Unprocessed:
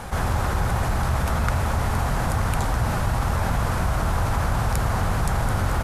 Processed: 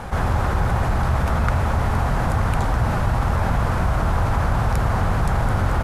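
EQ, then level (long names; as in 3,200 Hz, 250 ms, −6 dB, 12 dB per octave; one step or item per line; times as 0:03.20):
high-shelf EQ 4,200 Hz −10.5 dB
+3.0 dB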